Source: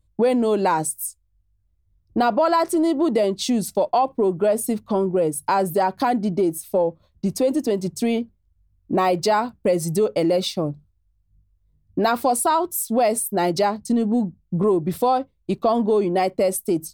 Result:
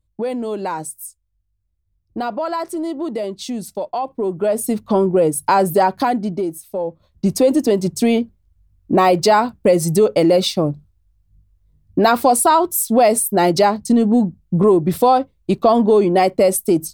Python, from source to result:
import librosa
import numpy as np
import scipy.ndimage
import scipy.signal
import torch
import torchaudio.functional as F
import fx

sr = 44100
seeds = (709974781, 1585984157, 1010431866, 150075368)

y = fx.gain(x, sr, db=fx.line((3.94, -4.5), (4.91, 5.5), (5.84, 5.5), (6.71, -5.0), (7.27, 6.0)))